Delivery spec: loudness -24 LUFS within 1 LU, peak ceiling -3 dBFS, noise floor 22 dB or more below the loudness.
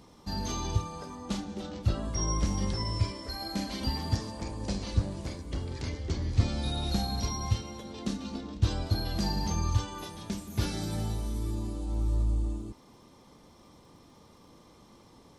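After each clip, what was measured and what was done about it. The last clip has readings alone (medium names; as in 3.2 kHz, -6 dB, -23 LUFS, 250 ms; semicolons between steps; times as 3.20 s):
tick rate 19 per s; loudness -33.0 LUFS; peak level -11.0 dBFS; loudness target -24.0 LUFS
-> de-click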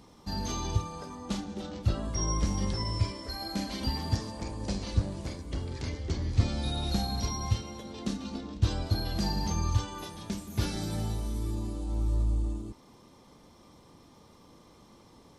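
tick rate 0 per s; loudness -33.0 LUFS; peak level -11.0 dBFS; loudness target -24.0 LUFS
-> trim +9 dB; peak limiter -3 dBFS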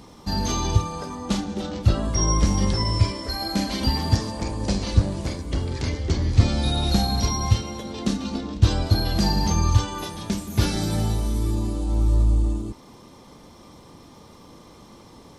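loudness -24.0 LUFS; peak level -3.0 dBFS; noise floor -48 dBFS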